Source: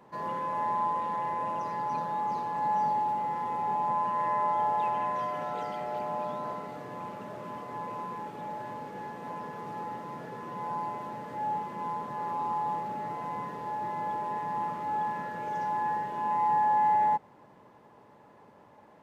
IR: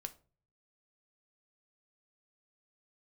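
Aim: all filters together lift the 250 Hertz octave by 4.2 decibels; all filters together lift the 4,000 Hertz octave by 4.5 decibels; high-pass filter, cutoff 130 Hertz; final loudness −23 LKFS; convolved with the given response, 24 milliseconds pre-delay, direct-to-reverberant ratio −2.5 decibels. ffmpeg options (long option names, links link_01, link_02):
-filter_complex "[0:a]highpass=130,equalizer=frequency=250:width_type=o:gain=6,equalizer=frequency=4000:width_type=o:gain=6,asplit=2[link_01][link_02];[1:a]atrim=start_sample=2205,adelay=24[link_03];[link_02][link_03]afir=irnorm=-1:irlink=0,volume=5.5dB[link_04];[link_01][link_04]amix=inputs=2:normalize=0,volume=10.5dB"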